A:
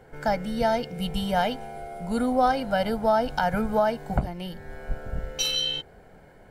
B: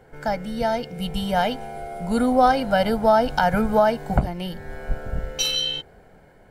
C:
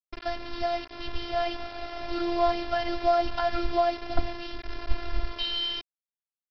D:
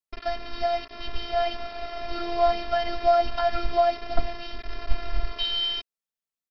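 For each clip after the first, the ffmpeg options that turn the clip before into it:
-af "dynaudnorm=f=410:g=7:m=1.78"
-af "lowshelf=f=130:g=7.5,aresample=11025,acrusher=bits=4:mix=0:aa=0.000001,aresample=44100,afftfilt=real='hypot(re,im)*cos(PI*b)':imag='0':win_size=512:overlap=0.75,volume=0.631"
-af "aecho=1:1:4.5:0.55"

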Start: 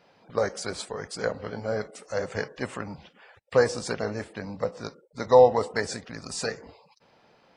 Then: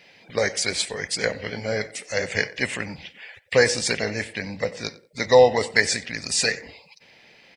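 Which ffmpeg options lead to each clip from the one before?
-filter_complex "[0:a]highshelf=f=1600:t=q:w=3:g=8,asplit=2[s0][s1];[s1]adelay=92,lowpass=f=4000:p=1,volume=0.119,asplit=2[s2][s3];[s3]adelay=92,lowpass=f=4000:p=1,volume=0.2[s4];[s0][s2][s4]amix=inputs=3:normalize=0,volume=1.41"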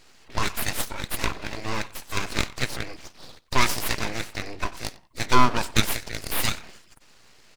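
-af "aeval=exprs='abs(val(0))':c=same"

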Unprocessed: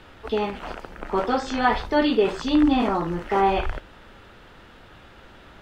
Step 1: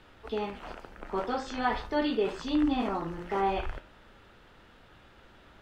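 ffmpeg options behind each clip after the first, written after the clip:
-af "bandreject=f=87.49:t=h:w=4,bandreject=f=174.98:t=h:w=4,bandreject=f=262.47:t=h:w=4,bandreject=f=349.96:t=h:w=4,bandreject=f=437.45:t=h:w=4,bandreject=f=524.94:t=h:w=4,bandreject=f=612.43:t=h:w=4,bandreject=f=699.92:t=h:w=4,bandreject=f=787.41:t=h:w=4,bandreject=f=874.9:t=h:w=4,bandreject=f=962.39:t=h:w=4,bandreject=f=1049.88:t=h:w=4,bandreject=f=1137.37:t=h:w=4,bandreject=f=1224.86:t=h:w=4,bandreject=f=1312.35:t=h:w=4,bandreject=f=1399.84:t=h:w=4,bandreject=f=1487.33:t=h:w=4,bandreject=f=1574.82:t=h:w=4,bandreject=f=1662.31:t=h:w=4,bandreject=f=1749.8:t=h:w=4,bandreject=f=1837.29:t=h:w=4,bandreject=f=1924.78:t=h:w=4,bandreject=f=2012.27:t=h:w=4,bandreject=f=2099.76:t=h:w=4,bandreject=f=2187.25:t=h:w=4,bandreject=f=2274.74:t=h:w=4,bandreject=f=2362.23:t=h:w=4,bandreject=f=2449.72:t=h:w=4,bandreject=f=2537.21:t=h:w=4,bandreject=f=2624.7:t=h:w=4,bandreject=f=2712.19:t=h:w=4,bandreject=f=2799.68:t=h:w=4,bandreject=f=2887.17:t=h:w=4,bandreject=f=2974.66:t=h:w=4,bandreject=f=3062.15:t=h:w=4,bandreject=f=3149.64:t=h:w=4,bandreject=f=3237.13:t=h:w=4,volume=0.398"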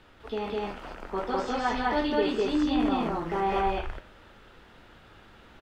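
-af "aecho=1:1:148.7|204.1:0.282|1"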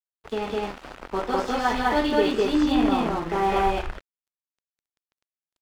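-af "aeval=exprs='sgn(val(0))*max(abs(val(0))-0.0075,0)':c=same,volume=1.88"

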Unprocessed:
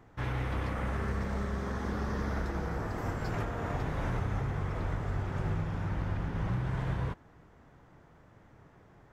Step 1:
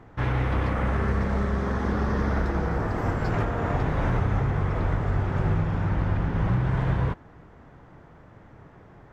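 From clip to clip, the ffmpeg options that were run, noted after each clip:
-af "lowpass=f=2900:p=1,volume=2.66"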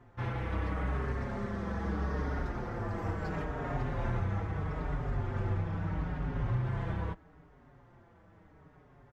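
-filter_complex "[0:a]asplit=2[s0][s1];[s1]adelay=5.2,afreqshift=-0.77[s2];[s0][s2]amix=inputs=2:normalize=1,volume=0.501"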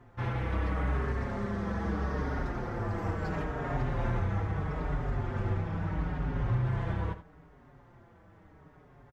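-af "aecho=1:1:79:0.237,volume=1.26"

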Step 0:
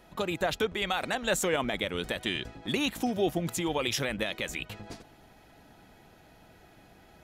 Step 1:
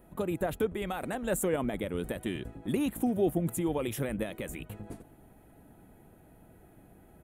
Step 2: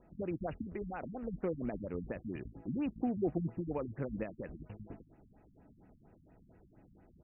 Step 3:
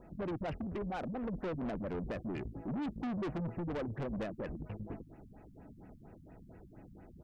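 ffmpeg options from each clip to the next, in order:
-af "firequalizer=gain_entry='entry(290,0);entry(790,-7);entry(5100,-23);entry(9000,0)':delay=0.05:min_phase=1,volume=1.26"
-af "acrusher=bits=6:mode=log:mix=0:aa=0.000001,afftfilt=real='re*lt(b*sr/1024,250*pow(3000/250,0.5+0.5*sin(2*PI*4.3*pts/sr)))':imag='im*lt(b*sr/1024,250*pow(3000/250,0.5+0.5*sin(2*PI*4.3*pts/sr)))':win_size=1024:overlap=0.75,volume=0.562"
-af "aeval=exprs='(tanh(126*val(0)+0.05)-tanh(0.05))/126':c=same,volume=2.37"

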